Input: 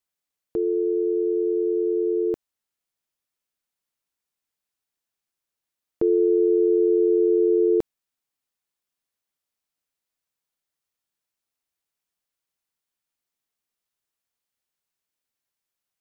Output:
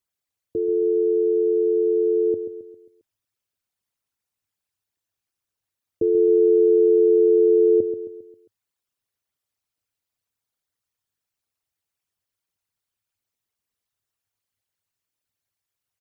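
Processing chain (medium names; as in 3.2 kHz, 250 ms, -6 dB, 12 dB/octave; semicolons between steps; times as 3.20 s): resonances exaggerated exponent 2; peaking EQ 100 Hz +13 dB 0.5 oct; feedback delay 134 ms, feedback 47%, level -10.5 dB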